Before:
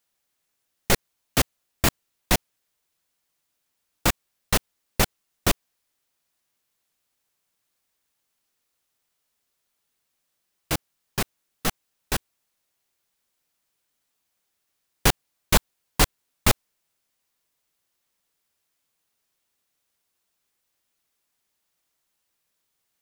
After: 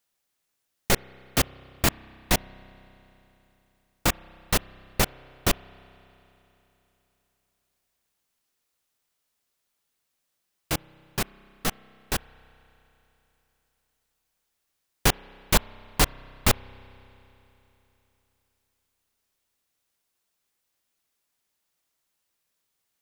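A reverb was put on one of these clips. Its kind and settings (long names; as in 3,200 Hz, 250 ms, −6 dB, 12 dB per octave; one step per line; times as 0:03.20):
spring reverb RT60 3.4 s, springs 31 ms, chirp 60 ms, DRR 20 dB
level −1.5 dB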